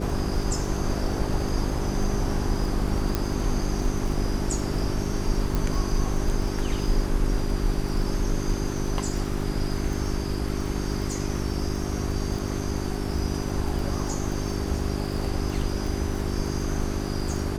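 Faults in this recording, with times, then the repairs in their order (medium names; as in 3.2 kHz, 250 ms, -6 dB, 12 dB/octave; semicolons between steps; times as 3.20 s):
crackle 28 per s -31 dBFS
hum 50 Hz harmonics 8 -30 dBFS
3.15 s: pop -10 dBFS
5.55 s: pop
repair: de-click; de-hum 50 Hz, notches 8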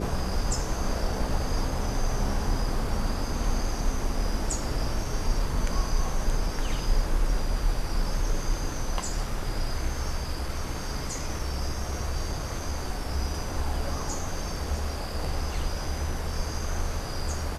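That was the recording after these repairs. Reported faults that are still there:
nothing left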